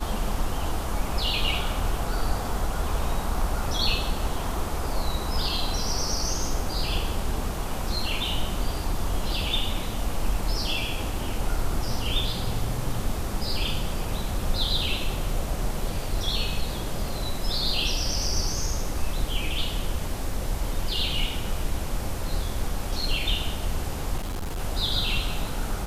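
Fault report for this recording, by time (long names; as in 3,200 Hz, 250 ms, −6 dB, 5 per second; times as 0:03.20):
0:24.17–0:24.60: clipping −27 dBFS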